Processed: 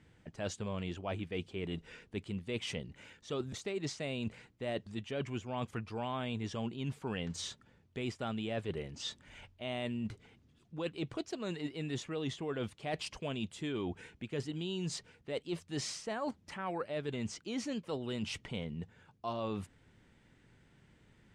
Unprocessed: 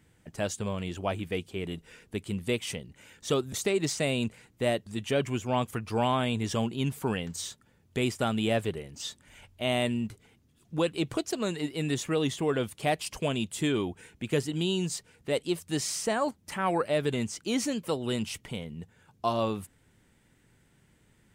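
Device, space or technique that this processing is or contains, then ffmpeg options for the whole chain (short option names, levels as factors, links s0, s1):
compression on the reversed sound: -af "lowpass=5100,areverse,acompressor=threshold=0.0178:ratio=6,areverse"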